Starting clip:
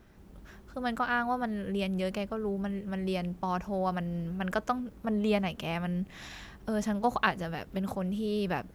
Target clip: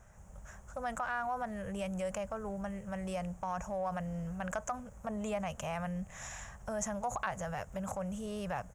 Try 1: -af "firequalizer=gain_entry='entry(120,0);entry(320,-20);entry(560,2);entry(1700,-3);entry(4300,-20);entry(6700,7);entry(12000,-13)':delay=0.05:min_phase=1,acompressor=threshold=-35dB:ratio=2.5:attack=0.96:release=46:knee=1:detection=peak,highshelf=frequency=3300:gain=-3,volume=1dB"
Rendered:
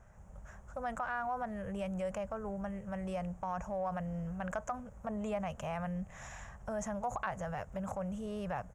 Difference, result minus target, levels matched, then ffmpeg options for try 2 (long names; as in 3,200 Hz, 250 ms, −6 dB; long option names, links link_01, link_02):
8,000 Hz band −7.5 dB
-af "firequalizer=gain_entry='entry(120,0);entry(320,-20);entry(560,2);entry(1700,-3);entry(4300,-20);entry(6700,7);entry(12000,-13)':delay=0.05:min_phase=1,acompressor=threshold=-35dB:ratio=2.5:attack=0.96:release=46:knee=1:detection=peak,highshelf=frequency=3300:gain=7,volume=1dB"